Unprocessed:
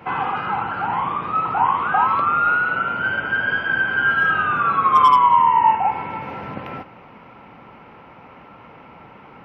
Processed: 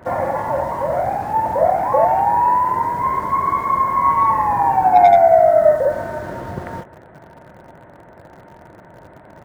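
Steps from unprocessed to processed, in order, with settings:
pitch shifter −6.5 semitones
in parallel at −12 dB: bit-depth reduction 6 bits, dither none
on the sum: level +1 dB

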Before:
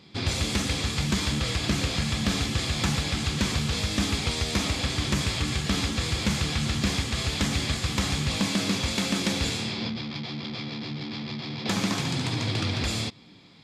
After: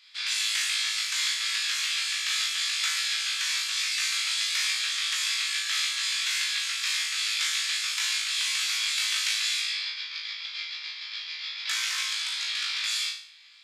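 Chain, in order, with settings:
inverse Chebyshev high-pass filter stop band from 260 Hz, stop band 80 dB
flutter between parallel walls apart 3.2 metres, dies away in 0.5 s

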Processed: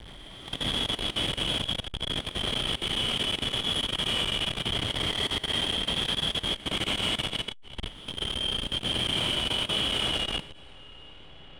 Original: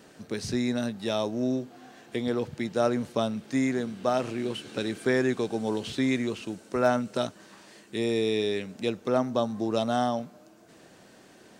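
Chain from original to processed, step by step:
peak hold with a rise ahead of every peak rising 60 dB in 1.37 s
voice inversion scrambler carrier 3,600 Hz
in parallel at +0.5 dB: downward compressor 10 to 1, threshold −31 dBFS, peak gain reduction 15 dB
on the sum: Butterworth high-pass 1,900 Hz 96 dB per octave
comparator with hysteresis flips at −28.5 dBFS
high-frequency loss of the air 60 metres
convolution reverb RT60 4.1 s, pre-delay 109 ms, DRR −8.5 dB
output level in coarse steps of 18 dB
saturating transformer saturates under 370 Hz
level −8.5 dB

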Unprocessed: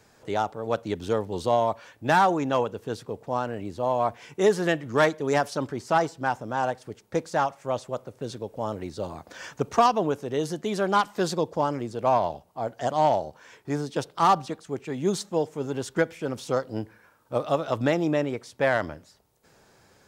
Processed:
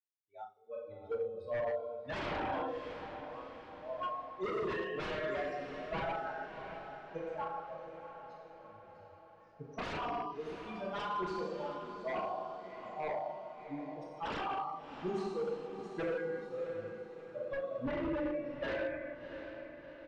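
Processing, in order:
spectral dynamics exaggerated over time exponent 3
high-pass filter 500 Hz 6 dB per octave
reverb whose tail is shaped and stops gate 490 ms falling, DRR −5 dB
wave folding −26.5 dBFS
dynamic equaliser 6,700 Hz, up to −5 dB, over −52 dBFS, Q 0.72
noise reduction from a noise print of the clip's start 19 dB
head-to-tape spacing loss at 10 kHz 29 dB
double-tracking delay 37 ms −9.5 dB
feedback delay with all-pass diffusion 689 ms, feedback 53%, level −9.5 dB
level −2.5 dB

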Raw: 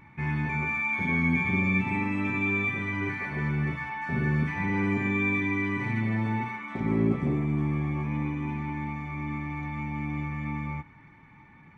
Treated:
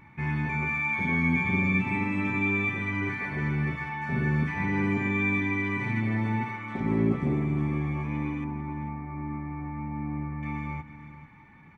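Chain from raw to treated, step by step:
0:08.44–0:10.43: Gaussian smoothing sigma 5 samples
on a send: single-tap delay 444 ms −14 dB

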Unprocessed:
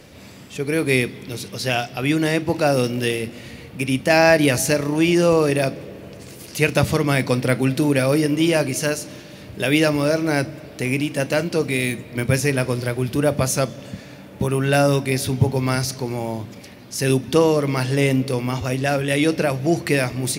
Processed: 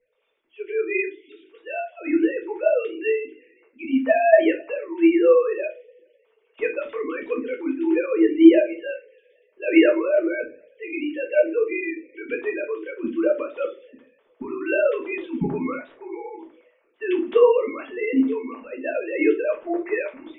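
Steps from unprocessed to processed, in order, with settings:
three sine waves on the formant tracks
notch filter 740 Hz, Q 19
in parallel at −1 dB: speech leveller 2 s
on the sum: rectangular room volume 130 cubic metres, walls furnished, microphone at 1.6 metres
multiband upward and downward expander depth 40%
level −14.5 dB

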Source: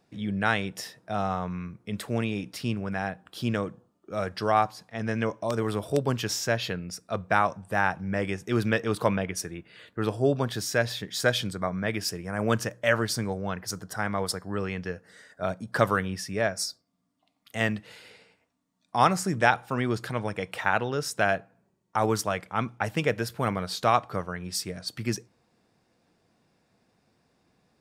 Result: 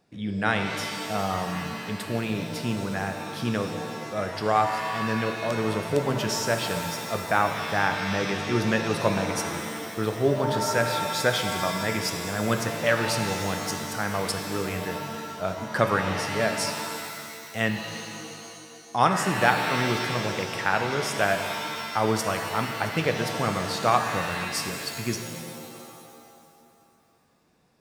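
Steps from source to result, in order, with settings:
reverb with rising layers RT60 2.2 s, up +7 semitones, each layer −2 dB, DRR 5.5 dB

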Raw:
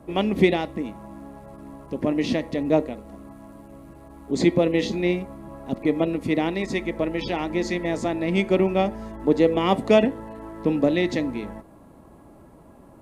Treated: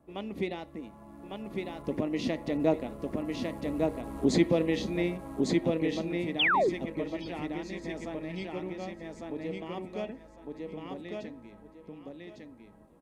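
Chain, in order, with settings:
camcorder AGC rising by 6 dB per second
source passing by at 0:03.61, 8 m/s, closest 6.3 metres
on a send: repeating echo 1,153 ms, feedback 21%, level −3 dB
on the sum: sound drawn into the spectrogram fall, 0:06.39–0:06.70, 320–3,700 Hz −22 dBFS
level −2.5 dB

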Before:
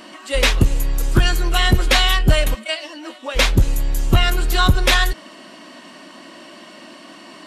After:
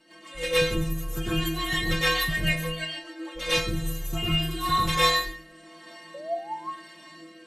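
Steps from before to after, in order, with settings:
parametric band 5,000 Hz −5.5 dB 0.2 octaves
dense smooth reverb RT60 0.59 s, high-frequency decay 0.95×, pre-delay 90 ms, DRR −8.5 dB
sound drawn into the spectrogram rise, 0:06.14–0:06.69, 550–1,100 Hz −11 dBFS
rotating-speaker cabinet horn 6.7 Hz, later 1 Hz, at 0:02.98
stiff-string resonator 160 Hz, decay 0.47 s, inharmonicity 0.008

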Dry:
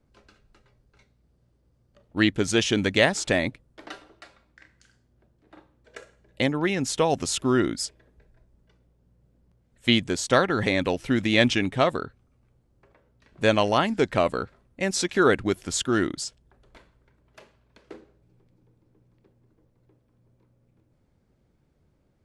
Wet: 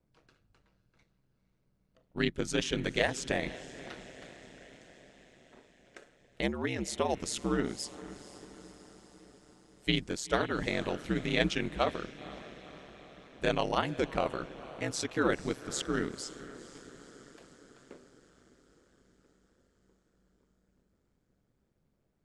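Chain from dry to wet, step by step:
feedback delay with all-pass diffusion 494 ms, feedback 60%, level −15.5 dB
ring modulation 70 Hz
level −6 dB

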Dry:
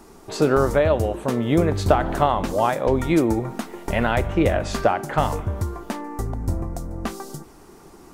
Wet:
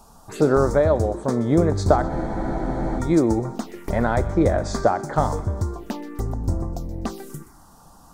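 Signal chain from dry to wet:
phaser swept by the level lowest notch 300 Hz, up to 2,800 Hz, full sweep at −22.5 dBFS
delay with a high-pass on its return 125 ms, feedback 35%, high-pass 2,000 Hz, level −14 dB
frozen spectrum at 0:02.11, 0.88 s
level +1 dB

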